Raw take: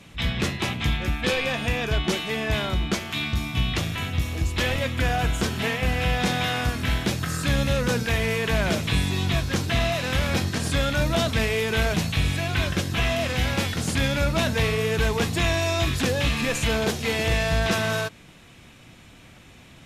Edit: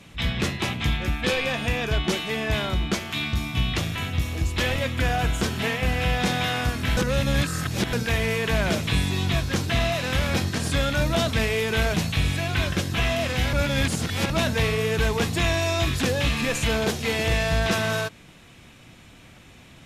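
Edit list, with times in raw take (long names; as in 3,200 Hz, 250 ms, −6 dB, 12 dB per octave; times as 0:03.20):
0:06.97–0:07.93: reverse
0:13.53–0:14.30: reverse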